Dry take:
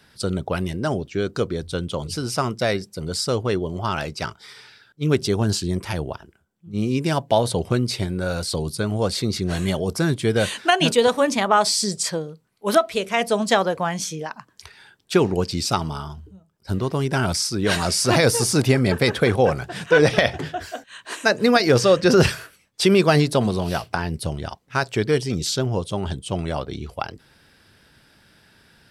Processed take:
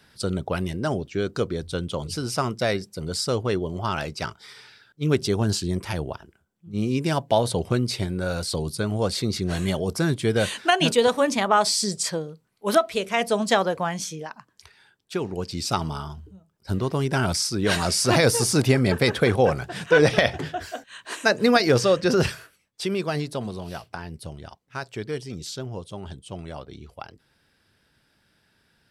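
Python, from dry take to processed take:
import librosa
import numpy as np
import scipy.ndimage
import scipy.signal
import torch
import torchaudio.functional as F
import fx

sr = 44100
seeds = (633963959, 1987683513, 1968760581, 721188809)

y = fx.gain(x, sr, db=fx.line((13.78, -2.0), (15.2, -10.5), (15.83, -1.5), (21.58, -1.5), (22.9, -10.5)))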